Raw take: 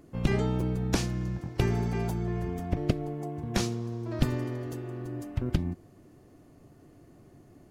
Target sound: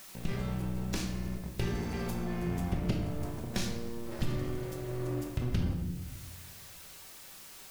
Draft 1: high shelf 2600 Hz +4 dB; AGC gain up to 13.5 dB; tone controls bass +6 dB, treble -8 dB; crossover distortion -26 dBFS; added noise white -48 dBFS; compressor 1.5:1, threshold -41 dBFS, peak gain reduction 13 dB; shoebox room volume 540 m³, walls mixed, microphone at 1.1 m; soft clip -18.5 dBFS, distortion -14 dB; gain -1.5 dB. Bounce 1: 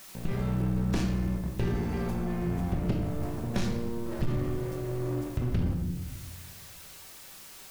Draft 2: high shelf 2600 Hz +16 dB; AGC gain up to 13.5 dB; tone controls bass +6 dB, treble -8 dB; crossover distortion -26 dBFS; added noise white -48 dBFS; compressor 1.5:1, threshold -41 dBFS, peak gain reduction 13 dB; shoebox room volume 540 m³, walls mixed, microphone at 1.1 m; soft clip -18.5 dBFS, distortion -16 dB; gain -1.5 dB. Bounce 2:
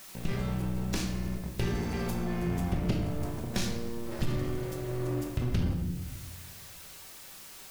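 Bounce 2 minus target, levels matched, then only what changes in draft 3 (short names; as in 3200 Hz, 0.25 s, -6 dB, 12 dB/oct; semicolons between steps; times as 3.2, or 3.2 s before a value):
compressor: peak gain reduction -3 dB
change: compressor 1.5:1, threshold -50 dBFS, peak gain reduction 16 dB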